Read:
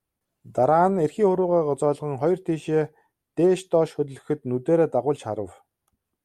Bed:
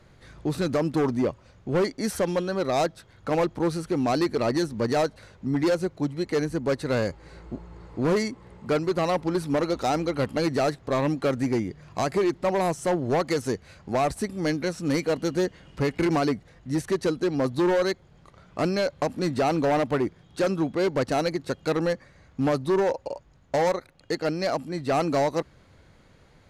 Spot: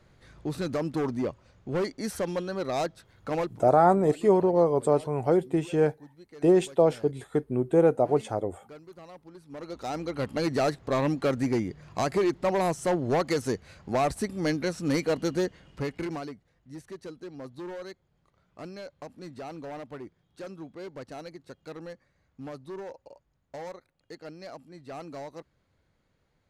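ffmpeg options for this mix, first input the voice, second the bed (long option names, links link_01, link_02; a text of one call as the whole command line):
ffmpeg -i stem1.wav -i stem2.wav -filter_complex "[0:a]adelay=3050,volume=-1dB[link_01];[1:a]volume=16.5dB,afade=type=out:start_time=3.4:duration=0.22:silence=0.125893,afade=type=in:start_time=9.46:duration=1.16:silence=0.0841395,afade=type=out:start_time=15.25:duration=1.08:silence=0.177828[link_02];[link_01][link_02]amix=inputs=2:normalize=0" out.wav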